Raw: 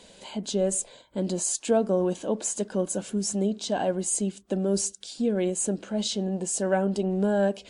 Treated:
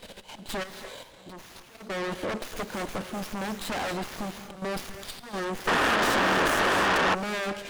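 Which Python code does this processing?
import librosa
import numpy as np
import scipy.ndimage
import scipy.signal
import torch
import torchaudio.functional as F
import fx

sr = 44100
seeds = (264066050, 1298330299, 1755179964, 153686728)

p1 = fx.fold_sine(x, sr, drive_db=17, ceiling_db=-12.0)
p2 = x + (p1 * 10.0 ** (-6.0 / 20.0))
p3 = fx.over_compress(p2, sr, threshold_db=-24.0, ratio=-0.5, at=(0.62, 1.76), fade=0.02)
p4 = fx.auto_swell(p3, sr, attack_ms=229.0)
p5 = fx.level_steps(p4, sr, step_db=12)
p6 = fx.low_shelf(p5, sr, hz=500.0, db=-4.5)
p7 = fx.rev_gated(p6, sr, seeds[0], gate_ms=310, shape='rising', drr_db=10.0)
p8 = fx.spec_paint(p7, sr, seeds[1], shape='noise', start_s=5.67, length_s=1.48, low_hz=230.0, high_hz=1900.0, level_db=-16.0)
p9 = fx.tube_stage(p8, sr, drive_db=19.0, bias=0.7)
y = fx.running_max(p9, sr, window=5)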